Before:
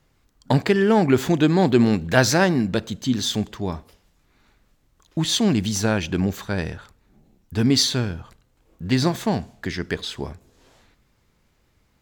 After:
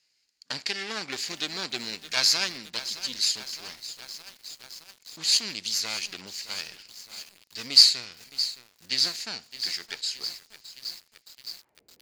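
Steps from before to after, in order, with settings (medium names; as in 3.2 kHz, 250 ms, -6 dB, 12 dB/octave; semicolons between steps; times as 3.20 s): comb filter that takes the minimum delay 0.42 ms; band-pass sweep 4.9 kHz -> 440 Hz, 11.33–11.84 s; bit-crushed delay 616 ms, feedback 80%, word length 8-bit, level -13 dB; trim +8 dB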